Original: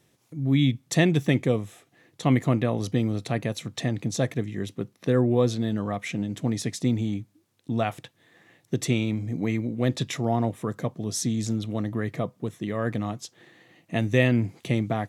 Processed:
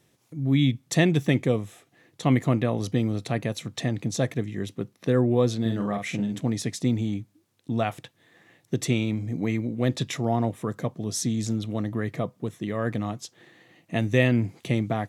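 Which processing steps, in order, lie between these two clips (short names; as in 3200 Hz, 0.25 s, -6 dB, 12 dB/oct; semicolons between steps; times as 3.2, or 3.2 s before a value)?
5.61–6.41 doubler 44 ms -5 dB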